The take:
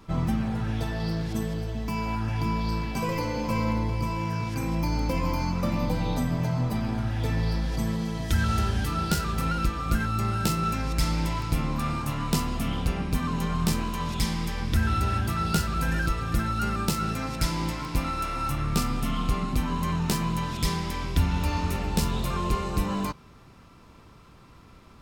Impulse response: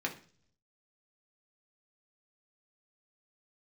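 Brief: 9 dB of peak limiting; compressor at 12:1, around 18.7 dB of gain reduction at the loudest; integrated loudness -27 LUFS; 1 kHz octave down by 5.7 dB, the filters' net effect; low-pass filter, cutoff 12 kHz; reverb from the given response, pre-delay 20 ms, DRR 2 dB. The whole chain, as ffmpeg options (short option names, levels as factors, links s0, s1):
-filter_complex "[0:a]lowpass=12000,equalizer=f=1000:t=o:g=-7.5,acompressor=threshold=0.0126:ratio=12,alimiter=level_in=3.55:limit=0.0631:level=0:latency=1,volume=0.282,asplit=2[s0][s1];[1:a]atrim=start_sample=2205,adelay=20[s2];[s1][s2]afir=irnorm=-1:irlink=0,volume=0.473[s3];[s0][s3]amix=inputs=2:normalize=0,volume=6.31"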